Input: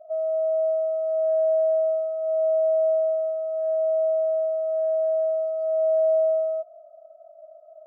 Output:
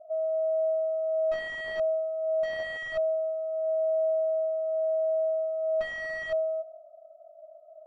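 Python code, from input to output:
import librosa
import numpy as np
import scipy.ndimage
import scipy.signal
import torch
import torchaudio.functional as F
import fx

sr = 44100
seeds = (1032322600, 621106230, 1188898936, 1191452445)

y = x + 10.0 ** (-19.5 / 20.0) * np.pad(x, (int(159 * sr / 1000.0), 0))[:len(x)]
y = (np.mod(10.0 ** (19.0 / 20.0) * y + 1.0, 2.0) - 1.0) / 10.0 ** (19.0 / 20.0)
y = scipy.signal.sosfilt(scipy.signal.butter(2, 1100.0, 'lowpass', fs=sr, output='sos'), y)
y = F.gain(torch.from_numpy(y), -2.5).numpy()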